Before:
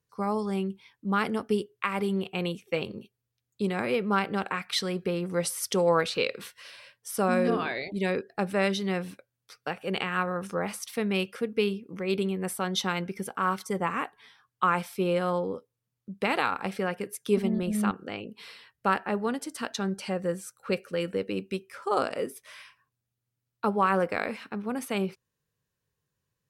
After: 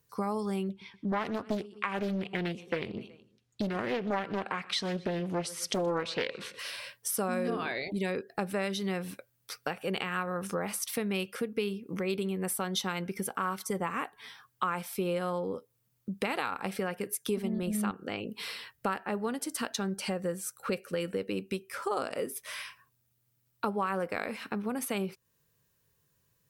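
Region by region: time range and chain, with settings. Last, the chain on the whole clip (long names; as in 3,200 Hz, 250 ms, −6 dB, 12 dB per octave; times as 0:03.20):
0:00.69–0:06.59: low-pass filter 5,800 Hz + repeating echo 124 ms, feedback 45%, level −22 dB + highs frequency-modulated by the lows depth 0.62 ms
whole clip: high-shelf EQ 11,000 Hz +12 dB; downward compressor 3 to 1, threshold −40 dBFS; level +7 dB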